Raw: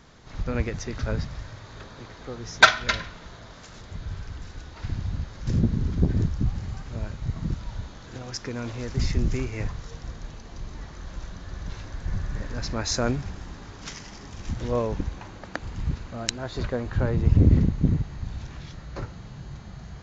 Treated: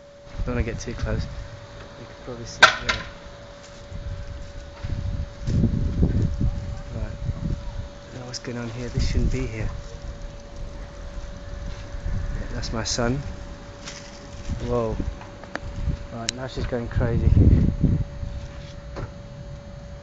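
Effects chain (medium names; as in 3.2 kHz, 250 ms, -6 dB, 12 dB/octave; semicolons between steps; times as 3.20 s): whistle 570 Hz -46 dBFS; 10.50–11.16 s: loudspeaker Doppler distortion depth 0.32 ms; trim +1.5 dB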